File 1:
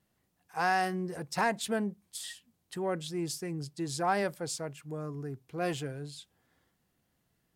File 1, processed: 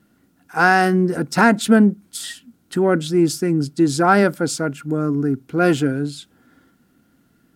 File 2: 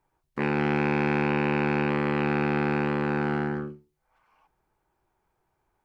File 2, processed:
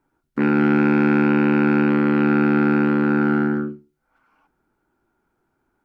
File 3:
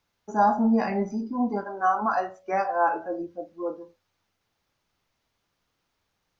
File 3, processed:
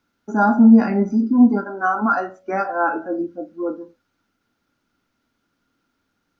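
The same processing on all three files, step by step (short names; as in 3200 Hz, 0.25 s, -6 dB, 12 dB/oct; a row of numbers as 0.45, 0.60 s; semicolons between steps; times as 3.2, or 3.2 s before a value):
small resonant body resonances 260/1400 Hz, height 15 dB, ringing for 30 ms; match loudness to -18 LUFS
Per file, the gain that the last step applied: +10.5, -0.5, +0.5 dB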